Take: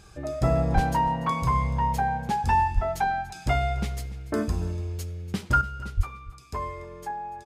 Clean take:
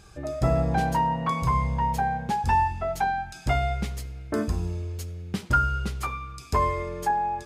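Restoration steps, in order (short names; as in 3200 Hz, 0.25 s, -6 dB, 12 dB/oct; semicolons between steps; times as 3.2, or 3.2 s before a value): clip repair -11.5 dBFS; de-plosive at 0.74/2.74/5.96; inverse comb 0.289 s -18.5 dB; gain 0 dB, from 5.61 s +9 dB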